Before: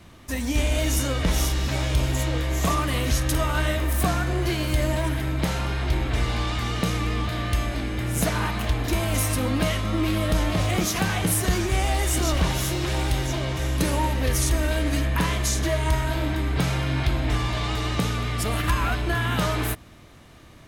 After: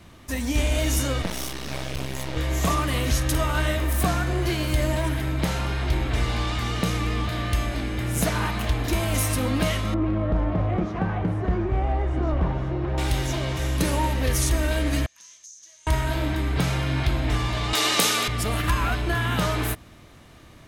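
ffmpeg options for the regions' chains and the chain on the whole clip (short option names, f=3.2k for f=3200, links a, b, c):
-filter_complex "[0:a]asettb=1/sr,asplit=3[a][b][c];[a]atrim=end=1.224[d];[b]atrim=start=1.22:end=2.37,asetpts=PTS-STARTPTS,afade=t=in:d=0.004:c=qsin,afade=t=out:st=1.146:d=0.004:c=qsin,highpass=110,bandreject=f=7.1k:w=8.7,aeval=exprs='max(val(0),0)':c=same[e];[c]atrim=start=2.366[f];[d][e]acrossfade=d=0.004:c1=hsin:c2=qsin[g];[g][f]acrossfade=d=0.004:c1=qsin:c2=hsin,asettb=1/sr,asplit=3[h][i][j];[h]atrim=end=9.944[k];[i]atrim=start=9.94:end=12.98,asetpts=PTS-STARTPTS,afade=t=in:d=0.004:c=qsin,afade=t=out:st=3.036:d=0.004:c=qsin,lowpass=1.1k,asoftclip=type=hard:threshold=-16dB[l];[j]atrim=start=12.976[m];[k][l]acrossfade=d=0.004:c1=hsin:c2=qsin[n];[n][m]acrossfade=d=0.004:c1=qsin:c2=hsin,asettb=1/sr,asplit=3[o][p][q];[o]atrim=end=15.064[r];[p]atrim=start=15.06:end=15.87,asetpts=PTS-STARTPTS,afade=t=in:d=0.004:c=qsin,afade=t=out:st=0.806:d=0.004:c=qsin,bandpass=f=6.2k:t=q:w=10,acompressor=threshold=-42dB:ratio=5:attack=3.2:release=140:knee=1:detection=peak[s];[q]atrim=start=15.866[t];[r][s]acrossfade=d=0.004:c1=hsin:c2=qsin[u];[u][t]acrossfade=d=0.004:c1=qsin:c2=hsin,asettb=1/sr,asplit=3[v][w][x];[v]atrim=end=17.734[y];[w]atrim=start=17.73:end=18.28,asetpts=PTS-STARTPTS,afade=t=in:d=0.004:c=qsin,afade=t=out:st=0.546:d=0.004:c=qsin,highpass=340,highshelf=f=3.3k:g=12,acontrast=25[z];[x]atrim=start=18.276[aa];[y][z]acrossfade=d=0.004:c1=hsin:c2=qsin[ab];[ab][aa]acrossfade=d=0.004:c1=qsin:c2=hsin"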